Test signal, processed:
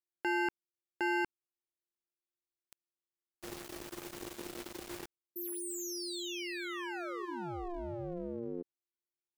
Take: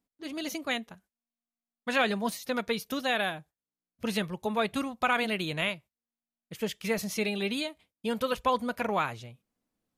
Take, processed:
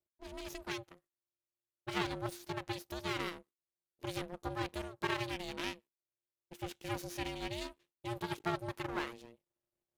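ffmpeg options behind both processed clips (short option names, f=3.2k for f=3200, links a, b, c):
-af "aeval=exprs='max(val(0),0)':c=same,aeval=exprs='val(0)*sin(2*PI*350*n/s)':c=same,volume=-3.5dB"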